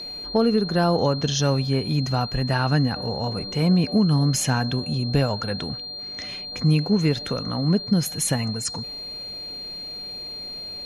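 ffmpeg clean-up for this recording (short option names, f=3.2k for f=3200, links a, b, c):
-af "bandreject=f=4.2k:w=30"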